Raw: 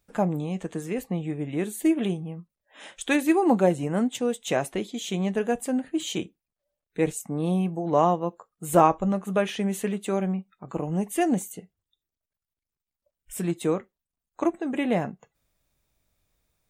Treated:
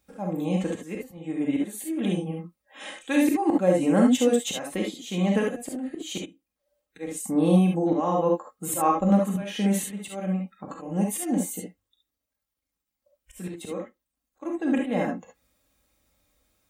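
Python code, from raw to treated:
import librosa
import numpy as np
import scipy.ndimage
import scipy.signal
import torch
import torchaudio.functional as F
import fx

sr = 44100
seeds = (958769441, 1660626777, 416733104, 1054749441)

y = scipy.signal.sosfilt(scipy.signal.butter(2, 44.0, 'highpass', fs=sr, output='sos'), x)
y = y + 0.53 * np.pad(y, (int(3.7 * sr / 1000.0), 0))[:len(y)]
y = fx.auto_swell(y, sr, attack_ms=354.0)
y = fx.rev_gated(y, sr, seeds[0], gate_ms=90, shape='rising', drr_db=0.0)
y = y * 10.0 ** (2.0 / 20.0)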